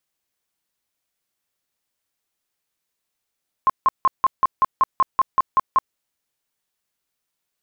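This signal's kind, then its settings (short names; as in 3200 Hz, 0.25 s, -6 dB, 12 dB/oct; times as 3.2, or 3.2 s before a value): tone bursts 1060 Hz, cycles 28, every 0.19 s, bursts 12, -11.5 dBFS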